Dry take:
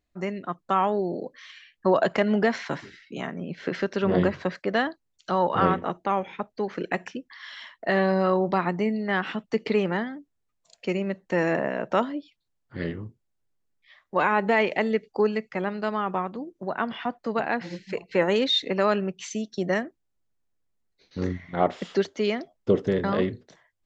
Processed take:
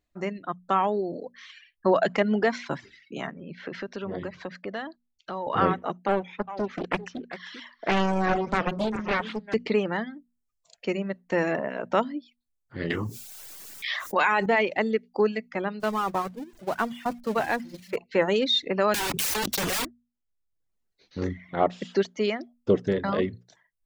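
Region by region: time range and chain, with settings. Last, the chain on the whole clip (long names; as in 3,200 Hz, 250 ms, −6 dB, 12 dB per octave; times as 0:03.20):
0:03.31–0:05.47: low-pass that shuts in the quiet parts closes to 2,900 Hz, open at −18.5 dBFS + downward compressor 2 to 1, threshold −35 dBFS
0:06.08–0:09.54: single-tap delay 395 ms −11 dB + highs frequency-modulated by the lows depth 0.95 ms
0:12.90–0:14.46: spectral tilt +3.5 dB per octave + envelope flattener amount 70%
0:15.80–0:17.96: converter with a step at zero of −32.5 dBFS + noise gate −30 dBFS, range −11 dB
0:18.94–0:19.85: leveller curve on the samples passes 5 + wrap-around overflow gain 23 dB + envelope flattener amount 100%
whole clip: reverb reduction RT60 0.69 s; mains-hum notches 60/120/180/240 Hz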